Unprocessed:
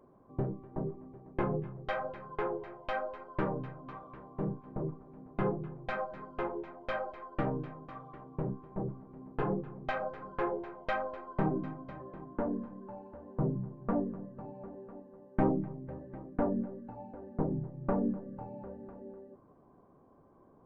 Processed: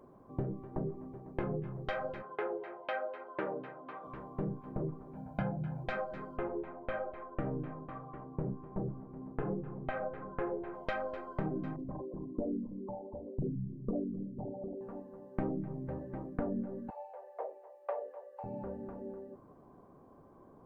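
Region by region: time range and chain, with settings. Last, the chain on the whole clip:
2.22–4.04 s: band-pass 380–3100 Hz + band-stop 1.1 kHz, Q 11
5.15–5.84 s: high-pass 45 Hz + comb 1.3 ms, depth 99%
6.37–10.74 s: distance through air 460 m + delay 74 ms -21 dB
11.76–14.81 s: resonances exaggerated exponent 3 + doubling 42 ms -13.5 dB + tape noise reduction on one side only encoder only
16.90–18.44 s: steep high-pass 510 Hz 48 dB/octave + peaking EQ 1.4 kHz -10 dB 0.36 oct
whole clip: dynamic bell 970 Hz, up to -6 dB, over -51 dBFS, Q 2.4; compression 4:1, threshold -36 dBFS; trim +3.5 dB

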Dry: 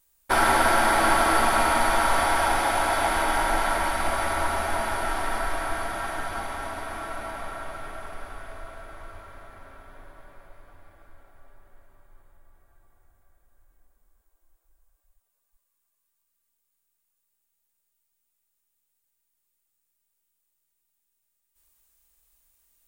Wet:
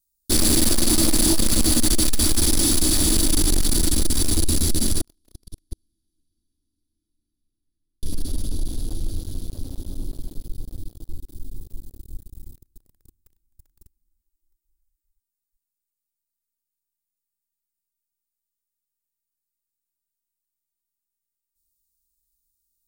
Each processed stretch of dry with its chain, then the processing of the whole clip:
5.01–8.03 s: gate -21 dBFS, range -29 dB + delay 203 ms -22 dB
whole clip: elliptic band-stop 310–4200 Hz; dynamic bell 7.7 kHz, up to +8 dB, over -58 dBFS, Q 3.8; waveshaping leveller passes 5; trim +1.5 dB

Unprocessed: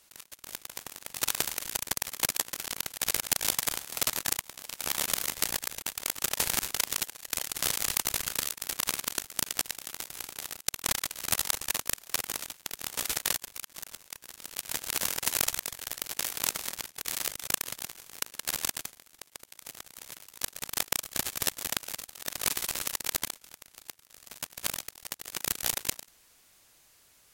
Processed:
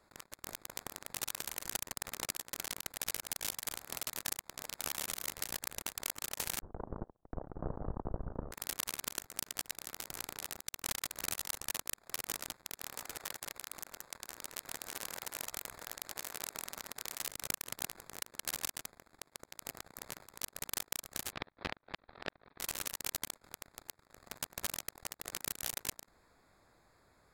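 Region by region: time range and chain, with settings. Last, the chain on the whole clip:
1.84–2.30 s: compression, threshold -33 dBFS + loudspeaker Doppler distortion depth 0.25 ms
6.60–8.52 s: Gaussian low-pass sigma 9.8 samples + gate -57 dBFS, range -23 dB + bass shelf 72 Hz +10.5 dB
12.74–17.20 s: chunks repeated in reverse 131 ms, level -3 dB + bass shelf 280 Hz -7 dB + compression 4:1, threshold -38 dBFS
21.32–22.60 s: steep low-pass 4.1 kHz 48 dB/octave + inverted gate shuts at -20 dBFS, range -27 dB
whole clip: local Wiener filter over 15 samples; compression 12:1, threshold -35 dBFS; peak limiter -21.5 dBFS; trim +4 dB

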